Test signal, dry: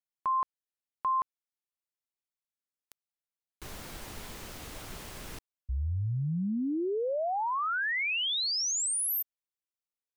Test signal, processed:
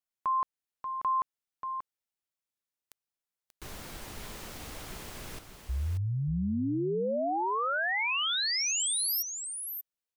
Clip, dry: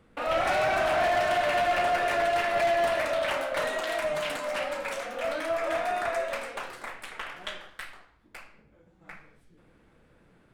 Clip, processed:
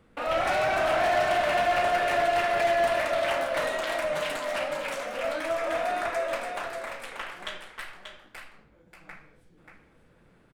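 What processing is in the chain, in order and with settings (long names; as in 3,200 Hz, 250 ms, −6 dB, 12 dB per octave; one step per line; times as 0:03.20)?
single-tap delay 585 ms −7.5 dB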